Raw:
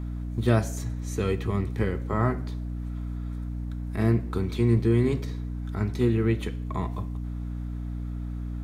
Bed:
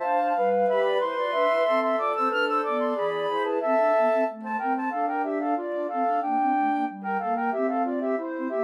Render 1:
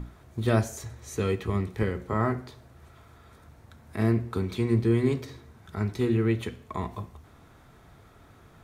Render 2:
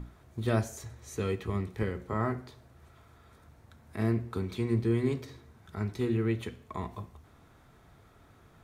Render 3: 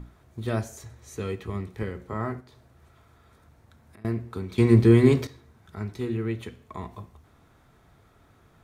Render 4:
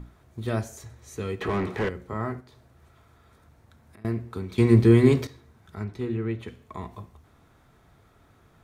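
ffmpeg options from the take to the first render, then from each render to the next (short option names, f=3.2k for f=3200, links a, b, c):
-af "bandreject=f=60:t=h:w=6,bandreject=f=120:t=h:w=6,bandreject=f=180:t=h:w=6,bandreject=f=240:t=h:w=6,bandreject=f=300:t=h:w=6,bandreject=f=360:t=h:w=6"
-af "volume=-4.5dB"
-filter_complex "[0:a]asettb=1/sr,asplit=3[a][b][c];[a]atrim=end=2.404[d];[b]atrim=start=2.4:end=4.05,asetpts=PTS-STARTPTS,afade=t=in:d=0.004:c=qsin,afade=t=out:st=1.646:d=0.004:c=qsin,acompressor=threshold=-49dB:ratio=6:attack=3.2:release=140:knee=1:detection=peak[e];[c]atrim=start=4.046[f];[d][e]acrossfade=d=0.004:c1=hsin:c2=qsin[g];[g][f]acrossfade=d=0.004:c1=qsin:c2=hsin,asplit=3[h][i][j];[h]atrim=end=4.582[k];[i]atrim=start=4.578:end=5.272,asetpts=PTS-STARTPTS,volume=11.5dB[l];[j]atrim=start=5.268[m];[k][l]acrossfade=d=0.004:c1=hsin:c2=hsin[n];[n][m]acrossfade=d=0.004:c1=hsin:c2=hsin"
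-filter_complex "[0:a]asettb=1/sr,asplit=3[a][b][c];[a]atrim=end=1.414[d];[b]atrim=start=1.41:end=1.89,asetpts=PTS-STARTPTS,afade=t=in:d=0.004:c=qsin,afade=t=out:st=0.476:d=0.004:c=qsin,asplit=2[e][f];[f]highpass=f=720:p=1,volume=29dB,asoftclip=type=tanh:threshold=-17dB[g];[e][g]amix=inputs=2:normalize=0,lowpass=f=1.3k:p=1,volume=-6dB[h];[c]atrim=start=1.886[i];[d][h]acrossfade=d=0.004:c1=hsin:c2=qsin[j];[j][i]acrossfade=d=0.004:c1=qsin:c2=hsin,asettb=1/sr,asplit=3[k][l][m];[k]atrim=end=5.844[n];[l]atrim=start=5.84:end=6.48,asetpts=PTS-STARTPTS,afade=t=in:d=0.004:c=qsin,afade=t=out:st=0.636:d=0.004:c=qsin,highshelf=f=5k:g=-10.5[o];[m]atrim=start=6.476[p];[n][o]acrossfade=d=0.004:c1=hsin:c2=qsin[q];[q][p]acrossfade=d=0.004:c1=qsin:c2=hsin"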